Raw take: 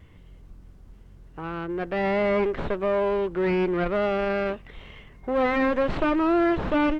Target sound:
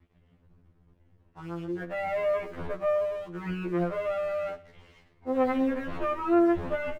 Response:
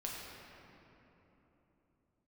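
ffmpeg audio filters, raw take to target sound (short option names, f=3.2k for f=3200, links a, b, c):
-filter_complex "[0:a]bass=f=250:g=0,treble=f=4k:g=-14,aeval=exprs='sgn(val(0))*max(abs(val(0))-0.00376,0)':c=same,asplit=2[a][b];[b]aecho=0:1:64|128|192|256:0.126|0.0604|0.029|0.0139[c];[a][c]amix=inputs=2:normalize=0,afftfilt=real='re*2*eq(mod(b,4),0)':imag='im*2*eq(mod(b,4),0)':win_size=2048:overlap=0.75,volume=-3.5dB"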